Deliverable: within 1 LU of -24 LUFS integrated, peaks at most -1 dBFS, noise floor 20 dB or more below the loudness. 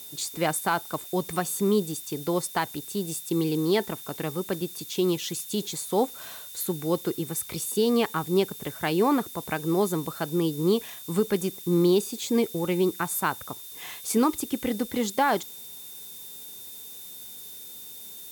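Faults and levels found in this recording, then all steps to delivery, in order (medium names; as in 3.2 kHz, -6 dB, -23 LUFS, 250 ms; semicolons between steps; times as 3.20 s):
steady tone 3.6 kHz; tone level -48 dBFS; noise floor -42 dBFS; noise floor target -47 dBFS; loudness -27.0 LUFS; peak level -12.0 dBFS; loudness target -24.0 LUFS
-> band-stop 3.6 kHz, Q 30; noise print and reduce 6 dB; trim +3 dB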